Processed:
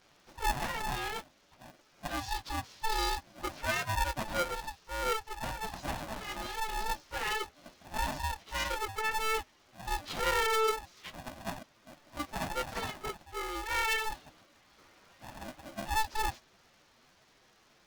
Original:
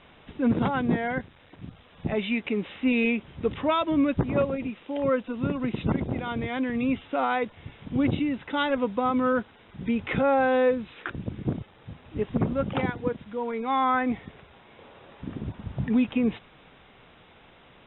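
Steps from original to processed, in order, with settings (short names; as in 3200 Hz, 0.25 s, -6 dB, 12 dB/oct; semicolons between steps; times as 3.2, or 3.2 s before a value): pitch shift by moving bins +9.5 st; polarity switched at an audio rate 440 Hz; gain -6 dB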